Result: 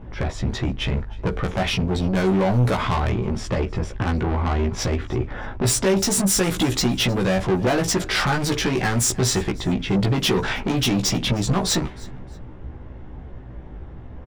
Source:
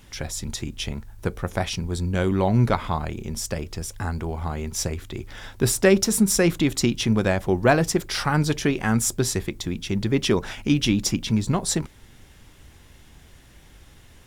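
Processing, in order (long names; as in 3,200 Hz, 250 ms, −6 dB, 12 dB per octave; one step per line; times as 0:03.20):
in parallel at +2 dB: brickwall limiter −12.5 dBFS, peak gain reduction 9 dB
on the sum: low-pass that shuts in the quiet parts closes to 770 Hz, open at −9.5 dBFS
downward compressor, threshold −15 dBFS, peak gain reduction 8 dB
soft clipping −23 dBFS, distortion −7 dB
double-tracking delay 16 ms −2.5 dB
on a send: repeating echo 311 ms, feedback 29%, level −23 dB
on the sum: level +4.5 dB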